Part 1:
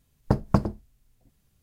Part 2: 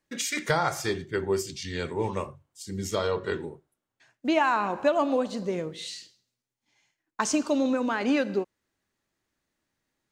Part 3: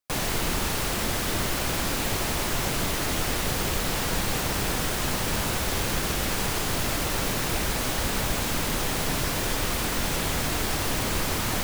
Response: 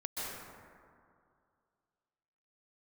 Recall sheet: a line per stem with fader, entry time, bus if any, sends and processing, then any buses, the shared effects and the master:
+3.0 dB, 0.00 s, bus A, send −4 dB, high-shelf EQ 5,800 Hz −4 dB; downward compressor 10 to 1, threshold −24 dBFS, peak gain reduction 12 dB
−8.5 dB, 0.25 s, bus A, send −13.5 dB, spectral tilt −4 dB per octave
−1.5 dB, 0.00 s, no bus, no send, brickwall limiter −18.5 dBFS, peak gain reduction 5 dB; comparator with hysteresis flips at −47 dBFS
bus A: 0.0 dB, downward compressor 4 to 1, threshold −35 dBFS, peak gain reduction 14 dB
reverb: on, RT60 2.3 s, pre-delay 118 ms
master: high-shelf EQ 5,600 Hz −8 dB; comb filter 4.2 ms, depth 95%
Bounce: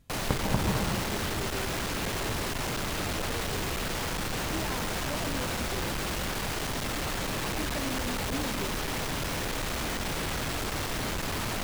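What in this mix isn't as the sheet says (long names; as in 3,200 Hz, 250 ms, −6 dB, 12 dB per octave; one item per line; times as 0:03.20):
stem 1: missing high-shelf EQ 5,800 Hz −4 dB
stem 2 −8.5 dB → −19.0 dB
master: missing comb filter 4.2 ms, depth 95%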